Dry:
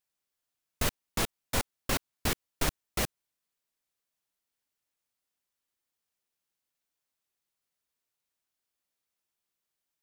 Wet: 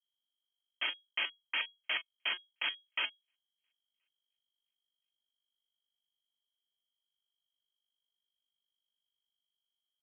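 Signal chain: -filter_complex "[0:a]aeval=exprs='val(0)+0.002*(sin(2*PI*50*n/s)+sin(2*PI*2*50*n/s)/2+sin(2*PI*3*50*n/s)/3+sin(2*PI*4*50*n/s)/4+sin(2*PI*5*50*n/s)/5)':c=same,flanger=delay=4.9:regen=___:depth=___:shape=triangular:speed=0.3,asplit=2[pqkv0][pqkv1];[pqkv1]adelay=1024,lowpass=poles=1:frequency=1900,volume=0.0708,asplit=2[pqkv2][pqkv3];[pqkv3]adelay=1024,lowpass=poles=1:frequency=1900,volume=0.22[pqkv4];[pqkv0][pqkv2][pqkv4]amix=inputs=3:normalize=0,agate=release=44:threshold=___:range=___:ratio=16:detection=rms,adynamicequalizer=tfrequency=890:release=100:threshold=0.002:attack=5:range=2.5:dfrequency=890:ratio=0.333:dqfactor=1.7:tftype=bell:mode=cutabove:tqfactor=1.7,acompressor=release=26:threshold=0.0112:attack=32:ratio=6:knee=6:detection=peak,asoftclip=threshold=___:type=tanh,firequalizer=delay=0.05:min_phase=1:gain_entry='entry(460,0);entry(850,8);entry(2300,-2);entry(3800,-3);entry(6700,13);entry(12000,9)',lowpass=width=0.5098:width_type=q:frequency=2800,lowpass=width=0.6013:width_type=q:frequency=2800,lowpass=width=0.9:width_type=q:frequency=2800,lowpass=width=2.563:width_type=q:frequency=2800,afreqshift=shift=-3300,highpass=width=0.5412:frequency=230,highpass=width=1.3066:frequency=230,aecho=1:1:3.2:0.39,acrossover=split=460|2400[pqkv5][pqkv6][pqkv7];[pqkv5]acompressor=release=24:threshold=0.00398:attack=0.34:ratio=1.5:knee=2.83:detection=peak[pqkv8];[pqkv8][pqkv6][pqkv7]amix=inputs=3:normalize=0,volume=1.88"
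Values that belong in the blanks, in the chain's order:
-81, 1.2, 0.00447, 0.0178, 0.0237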